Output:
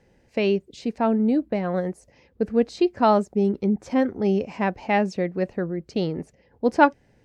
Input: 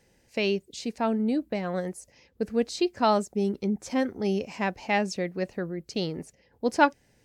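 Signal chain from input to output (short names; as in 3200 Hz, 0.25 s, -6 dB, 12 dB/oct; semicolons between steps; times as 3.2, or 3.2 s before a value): LPF 1500 Hz 6 dB/oct; gain +5.5 dB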